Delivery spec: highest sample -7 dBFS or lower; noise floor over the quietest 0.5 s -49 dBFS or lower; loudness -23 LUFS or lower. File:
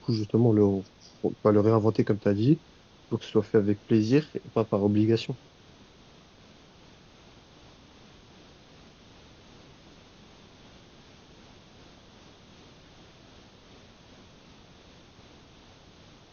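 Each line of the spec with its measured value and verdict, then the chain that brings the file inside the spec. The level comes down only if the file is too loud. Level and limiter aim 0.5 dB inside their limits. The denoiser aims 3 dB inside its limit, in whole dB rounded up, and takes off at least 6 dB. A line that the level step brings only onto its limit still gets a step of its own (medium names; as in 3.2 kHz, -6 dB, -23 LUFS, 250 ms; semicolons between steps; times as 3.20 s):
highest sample -8.0 dBFS: pass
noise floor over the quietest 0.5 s -55 dBFS: pass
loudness -25.5 LUFS: pass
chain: none needed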